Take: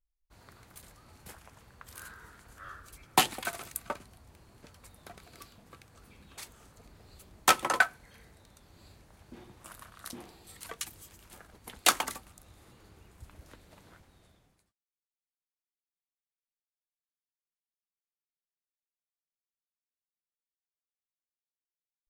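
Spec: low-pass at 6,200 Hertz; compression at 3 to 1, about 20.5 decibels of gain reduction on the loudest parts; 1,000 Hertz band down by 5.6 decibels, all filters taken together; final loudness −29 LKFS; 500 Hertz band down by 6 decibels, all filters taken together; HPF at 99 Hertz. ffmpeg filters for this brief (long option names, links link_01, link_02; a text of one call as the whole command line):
ffmpeg -i in.wav -af "highpass=99,lowpass=6200,equalizer=frequency=500:width_type=o:gain=-6,equalizer=frequency=1000:width_type=o:gain=-6,acompressor=threshold=-50dB:ratio=3,volume=25.5dB" out.wav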